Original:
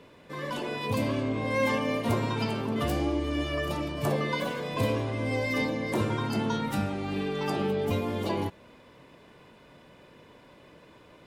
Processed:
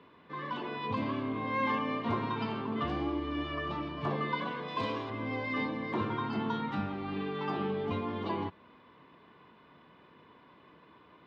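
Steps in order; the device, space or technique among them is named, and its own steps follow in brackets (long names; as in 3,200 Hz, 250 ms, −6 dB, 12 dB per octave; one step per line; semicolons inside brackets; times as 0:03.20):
guitar cabinet (loudspeaker in its box 87–3,700 Hz, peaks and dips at 120 Hz −6 dB, 560 Hz −8 dB, 1,100 Hz +7 dB, 2,500 Hz −3 dB)
0:04.68–0:05.10: bass and treble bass −6 dB, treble +12 dB
level −4 dB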